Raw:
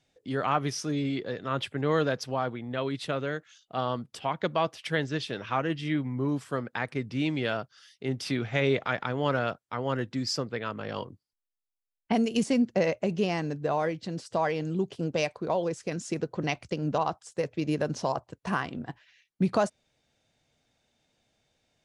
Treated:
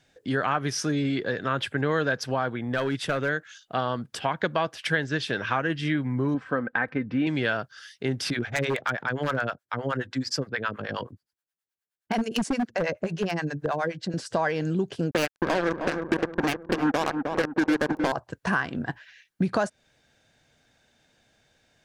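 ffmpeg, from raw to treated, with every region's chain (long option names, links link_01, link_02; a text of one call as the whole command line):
ffmpeg -i in.wav -filter_complex "[0:a]asettb=1/sr,asplit=3[link_01][link_02][link_03];[link_01]atrim=end=2.564[link_04];[link_02]atrim=start=2.56:end=3.29,asetpts=PTS-STARTPTS,afade=type=in:duration=0.004:curve=qsin,afade=type=out:start_time=0.726:duration=0.004:curve=qsin,bandreject=frequency=4100:width=7.9,aeval=exprs='clip(val(0),-1,0.0562)':channel_layout=same[link_05];[link_03]atrim=start=3.286[link_06];[link_04][link_05]acrossfade=duration=0.004:curve1=hsin:curve2=qsin[link_07];[link_07][link_06]acrossfade=duration=0.004:curve1=qsin:curve2=hsin,asettb=1/sr,asplit=3[link_08][link_09][link_10];[link_08]atrim=end=6.344[link_11];[link_09]atrim=start=6.34:end=7.27,asetpts=PTS-STARTPTS,afade=type=in:duration=0.004:curve=qsin,afade=type=out:start_time=0.926:duration=0.004:curve=qsin,lowpass=2000,aecho=1:1:3.9:0.44,atrim=end_sample=41013[link_12];[link_10]atrim=start=7.266[link_13];[link_11][link_12]acrossfade=duration=0.004:curve1=hsin:curve2=qsin[link_14];[link_14][link_13]acrossfade=duration=0.004:curve1=qsin:curve2=hsin,asettb=1/sr,asplit=3[link_15][link_16][link_17];[link_15]atrim=end=8.304[link_18];[link_16]atrim=start=8.3:end=14.14,asetpts=PTS-STARTPTS,afade=type=in:duration=0.004:curve=qsin,afade=type=out:start_time=5.836:duration=0.004:curve=qsin,highpass=66,acrossover=split=580[link_19][link_20];[link_19]aeval=exprs='val(0)*(1-1/2+1/2*cos(2*PI*9.5*n/s))':channel_layout=same[link_21];[link_20]aeval=exprs='val(0)*(1-1/2-1/2*cos(2*PI*9.5*n/s))':channel_layout=same[link_22];[link_21][link_22]amix=inputs=2:normalize=0,aeval=exprs='0.075*(abs(mod(val(0)/0.075+3,4)-2)-1)':channel_layout=same[link_23];[link_17]atrim=start=14.136[link_24];[link_18][link_23]acrossfade=duration=0.004:curve1=hsin:curve2=qsin[link_25];[link_25][link_24]acrossfade=duration=0.004:curve1=qsin:curve2=hsin,asettb=1/sr,asplit=3[link_26][link_27][link_28];[link_26]atrim=end=15.114[link_29];[link_27]atrim=start=15.11:end=18.12,asetpts=PTS-STARTPTS,afade=type=in:duration=0.004:curve=qsin,afade=type=out:start_time=3.006:duration=0.004:curve=qsin,highpass=frequency=260:width_type=q:width=3,acrusher=bits=3:mix=0:aa=0.5,asplit=2[link_30][link_31];[link_31]adelay=311,lowpass=frequency=1300:poles=1,volume=-9dB,asplit=2[link_32][link_33];[link_33]adelay=311,lowpass=frequency=1300:poles=1,volume=0.49,asplit=2[link_34][link_35];[link_35]adelay=311,lowpass=frequency=1300:poles=1,volume=0.49,asplit=2[link_36][link_37];[link_37]adelay=311,lowpass=frequency=1300:poles=1,volume=0.49,asplit=2[link_38][link_39];[link_39]adelay=311,lowpass=frequency=1300:poles=1,volume=0.49,asplit=2[link_40][link_41];[link_41]adelay=311,lowpass=frequency=1300:poles=1,volume=0.49[link_42];[link_30][link_32][link_34][link_36][link_38][link_40][link_42]amix=inputs=7:normalize=0,atrim=end_sample=132741[link_43];[link_28]atrim=start=18.116[link_44];[link_29][link_43]acrossfade=duration=0.004:curve1=hsin:curve2=qsin[link_45];[link_45][link_44]acrossfade=duration=0.004:curve1=qsin:curve2=hsin,equalizer=frequency=1600:width_type=o:width=0.29:gain=10,acompressor=threshold=-31dB:ratio=2.5,volume=7dB" out.wav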